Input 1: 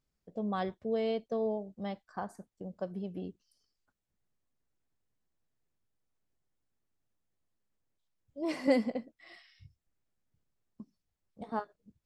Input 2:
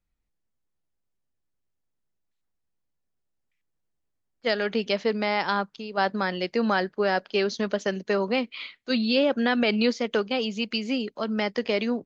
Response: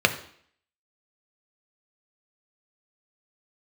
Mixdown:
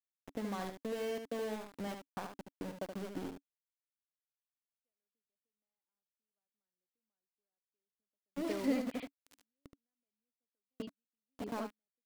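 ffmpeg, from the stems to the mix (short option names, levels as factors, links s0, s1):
-filter_complex "[0:a]acompressor=threshold=0.00708:ratio=3,aeval=exprs='val(0)*gte(abs(val(0)),0.00596)':c=same,volume=1.33,asplit=3[s0][s1][s2];[s1]volume=0.473[s3];[1:a]acompressor=threshold=0.0316:ratio=4,lowpass=f=1100:p=1,acontrast=89,adelay=400,volume=0.168[s4];[s2]apad=whole_len=549222[s5];[s4][s5]sidechaingate=range=0.00126:threshold=0.00355:ratio=16:detection=peak[s6];[s3]aecho=0:1:74:1[s7];[s0][s6][s7]amix=inputs=3:normalize=0,equalizer=f=280:t=o:w=0.28:g=9"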